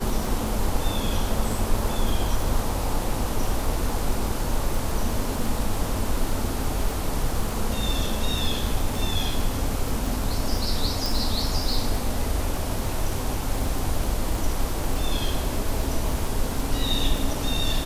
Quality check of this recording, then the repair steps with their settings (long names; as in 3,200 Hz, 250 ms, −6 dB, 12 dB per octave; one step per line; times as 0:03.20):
surface crackle 28 per second −26 dBFS
0:11.06: click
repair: click removal